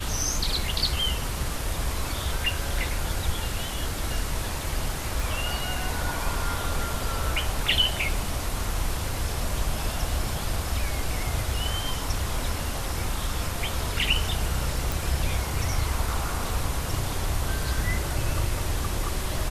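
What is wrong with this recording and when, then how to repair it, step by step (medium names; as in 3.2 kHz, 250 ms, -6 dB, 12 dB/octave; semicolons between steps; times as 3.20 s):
5.20 s: pop
14.92 s: pop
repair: de-click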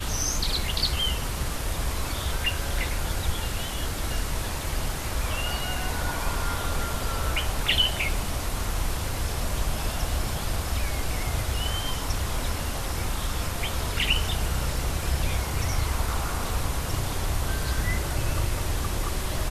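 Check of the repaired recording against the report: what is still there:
5.20 s: pop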